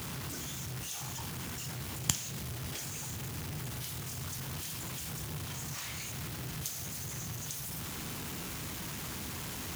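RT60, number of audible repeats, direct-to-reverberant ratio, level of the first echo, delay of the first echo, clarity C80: 0.55 s, no echo audible, 11.5 dB, no echo audible, no echo audible, 20.5 dB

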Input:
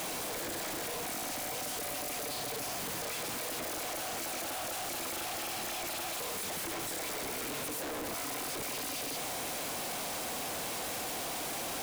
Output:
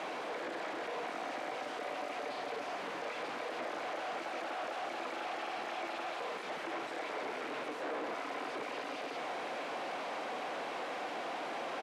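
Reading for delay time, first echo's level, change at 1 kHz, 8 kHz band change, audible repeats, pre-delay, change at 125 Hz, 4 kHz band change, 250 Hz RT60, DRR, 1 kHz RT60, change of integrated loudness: 927 ms, −9.0 dB, +1.5 dB, −20.5 dB, 1, no reverb audible, −13.0 dB, −7.5 dB, no reverb audible, no reverb audible, no reverb audible, −4.0 dB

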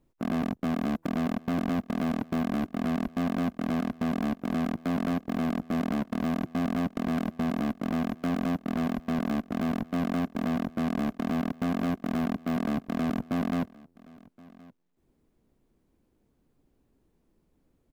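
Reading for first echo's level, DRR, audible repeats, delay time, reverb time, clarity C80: −23.0 dB, no reverb audible, 1, 1,072 ms, no reverb audible, no reverb audible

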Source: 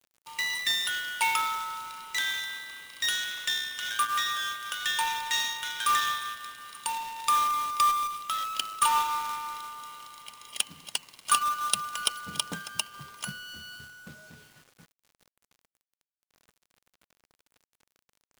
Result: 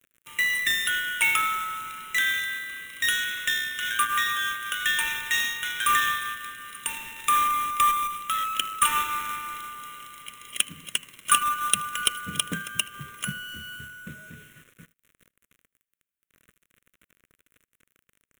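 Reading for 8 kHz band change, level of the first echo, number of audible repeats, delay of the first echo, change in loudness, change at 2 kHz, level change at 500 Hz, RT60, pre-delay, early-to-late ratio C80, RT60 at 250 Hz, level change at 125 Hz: +4.0 dB, −24.0 dB, 1, 78 ms, +3.5 dB, +7.0 dB, +2.0 dB, no reverb audible, no reverb audible, no reverb audible, no reverb audible, +7.0 dB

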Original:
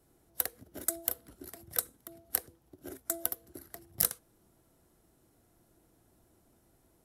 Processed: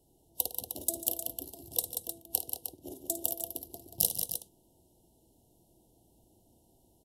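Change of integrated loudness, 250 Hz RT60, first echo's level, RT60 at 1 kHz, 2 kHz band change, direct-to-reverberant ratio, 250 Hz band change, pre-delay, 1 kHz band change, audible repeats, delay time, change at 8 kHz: +0.5 dB, no reverb audible, −11.0 dB, no reverb audible, −14.5 dB, no reverb audible, +1.5 dB, no reverb audible, −0.5 dB, 4, 53 ms, +2.0 dB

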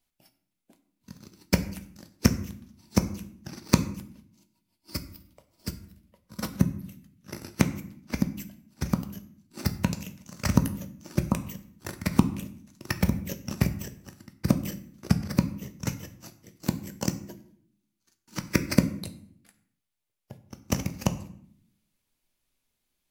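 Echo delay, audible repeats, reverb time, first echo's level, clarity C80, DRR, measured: no echo audible, no echo audible, 0.60 s, no echo audible, 16.5 dB, 8.5 dB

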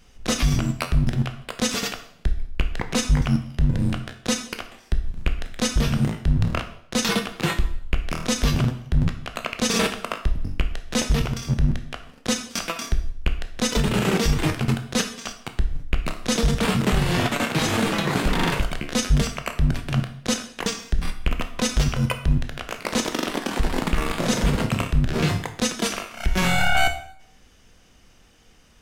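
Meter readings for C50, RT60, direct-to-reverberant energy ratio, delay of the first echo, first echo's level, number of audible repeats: 11.0 dB, 0.65 s, 6.5 dB, no echo audible, no echo audible, no echo audible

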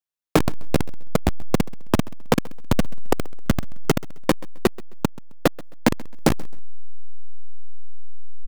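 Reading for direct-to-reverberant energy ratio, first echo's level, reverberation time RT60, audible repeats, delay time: no reverb audible, −22.0 dB, no reverb audible, 2, 132 ms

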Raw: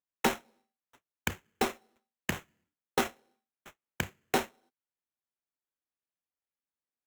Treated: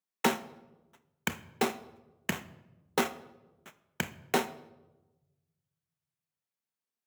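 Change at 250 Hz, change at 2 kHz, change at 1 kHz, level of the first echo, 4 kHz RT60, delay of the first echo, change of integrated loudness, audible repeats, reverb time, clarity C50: +1.5 dB, +0.5 dB, +0.5 dB, no echo audible, 0.65 s, no echo audible, +0.5 dB, no echo audible, 1.1 s, 16.0 dB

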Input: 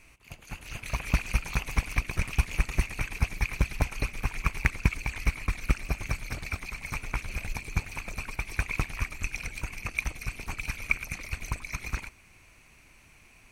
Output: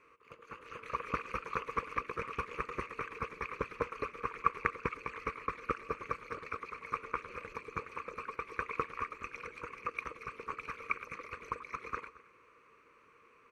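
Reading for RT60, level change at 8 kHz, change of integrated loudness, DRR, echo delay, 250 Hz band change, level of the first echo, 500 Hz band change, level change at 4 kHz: no reverb audible, below −20 dB, −7.0 dB, no reverb audible, 222 ms, −9.5 dB, −19.0 dB, +3.0 dB, −14.5 dB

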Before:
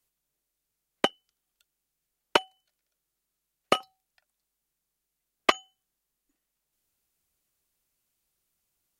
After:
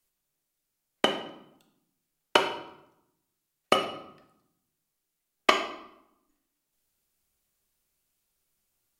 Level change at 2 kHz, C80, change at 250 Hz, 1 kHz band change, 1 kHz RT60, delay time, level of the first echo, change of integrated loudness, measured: +1.5 dB, 11.0 dB, +2.0 dB, +1.5 dB, 0.80 s, no echo audible, no echo audible, +0.5 dB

